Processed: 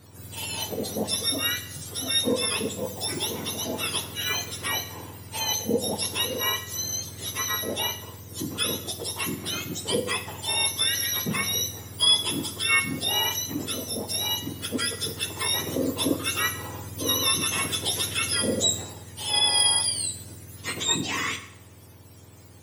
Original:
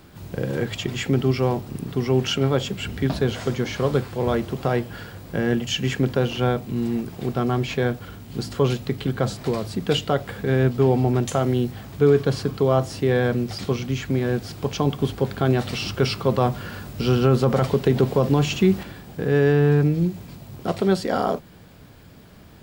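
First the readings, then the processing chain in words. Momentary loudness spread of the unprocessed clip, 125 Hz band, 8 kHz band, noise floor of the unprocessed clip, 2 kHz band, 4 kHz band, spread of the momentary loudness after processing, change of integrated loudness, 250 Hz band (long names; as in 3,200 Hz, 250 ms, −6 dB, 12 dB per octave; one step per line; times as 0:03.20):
10 LU, −15.5 dB, +14.0 dB, −46 dBFS, +1.5 dB, +8.0 dB, 10 LU, −2.5 dB, −10.5 dB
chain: frequency axis turned over on the octave scale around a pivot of 1,200 Hz
dense smooth reverb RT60 0.8 s, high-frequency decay 0.9×, DRR 8.5 dB
level −1.5 dB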